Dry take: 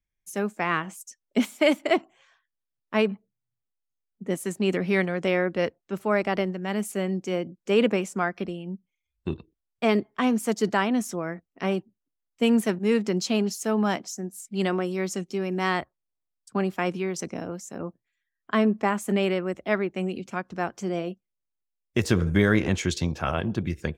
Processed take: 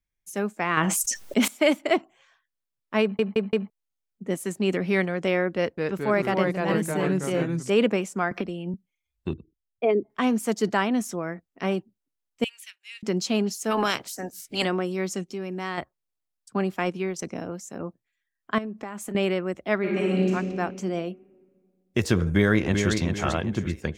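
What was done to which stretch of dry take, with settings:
0.77–1.48 fast leveller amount 70%
3.02 stutter in place 0.17 s, 4 plays
5.56–7.7 echoes that change speed 0.214 s, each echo -2 st, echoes 3
8.31–8.74 three-band squash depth 100%
9.33–10.1 formant sharpening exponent 2
12.44–13.03 ladder high-pass 2200 Hz, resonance 40%
13.7–14.64 spectral limiter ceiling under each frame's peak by 22 dB
15.26–15.78 compressor 1.5:1, threshold -36 dBFS
16.8–17.23 transient shaper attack +1 dB, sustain -5 dB
18.58–19.15 compressor 8:1, threshold -30 dBFS
19.79–20.31 reverb throw, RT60 2 s, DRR -5.5 dB
22.31–22.95 echo throw 0.39 s, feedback 35%, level -5.5 dB

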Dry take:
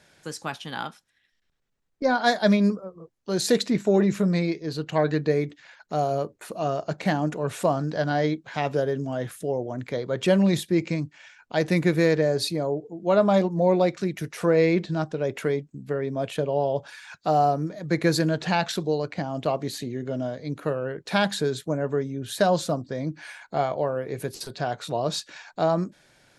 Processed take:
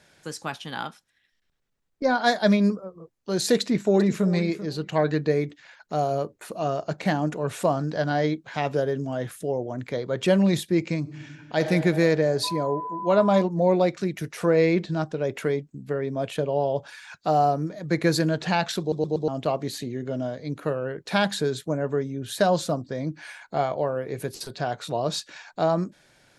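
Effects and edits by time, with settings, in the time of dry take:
3.6–4.26 echo throw 0.39 s, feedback 15%, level -13.5 dB
10.99–11.61 reverb throw, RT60 2.7 s, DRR 5 dB
12.43–13.41 whine 1000 Hz -30 dBFS
18.8 stutter in place 0.12 s, 4 plays

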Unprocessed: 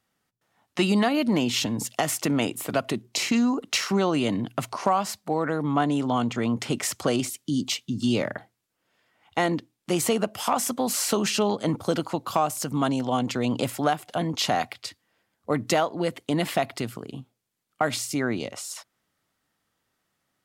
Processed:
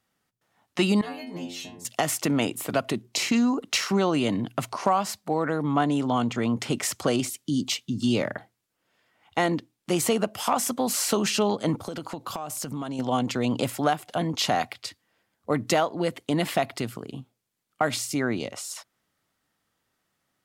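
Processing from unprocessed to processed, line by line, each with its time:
1.01–1.85 metallic resonator 86 Hz, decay 0.59 s, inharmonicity 0.002
11.78–12.99 compressor 16:1, threshold -28 dBFS

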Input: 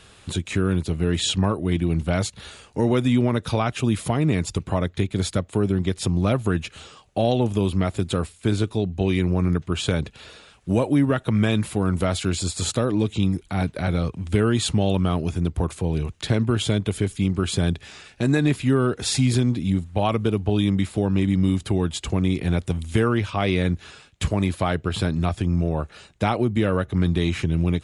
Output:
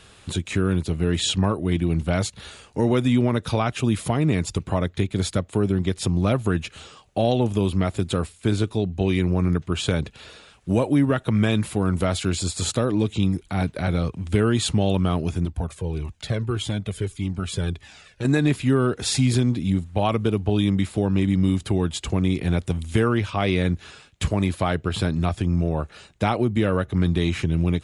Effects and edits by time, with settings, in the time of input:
15.45–18.25 cascading flanger falling 1.7 Hz

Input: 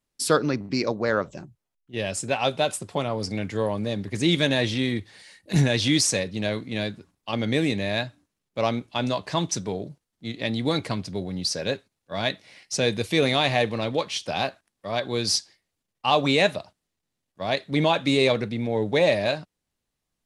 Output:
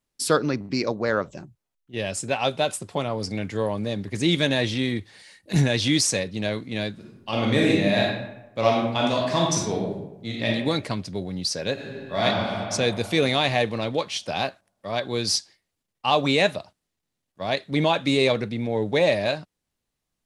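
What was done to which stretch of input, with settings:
6.92–10.47 reverb throw, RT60 0.93 s, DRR -2.5 dB
11.73–12.24 reverb throw, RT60 2.8 s, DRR -9 dB

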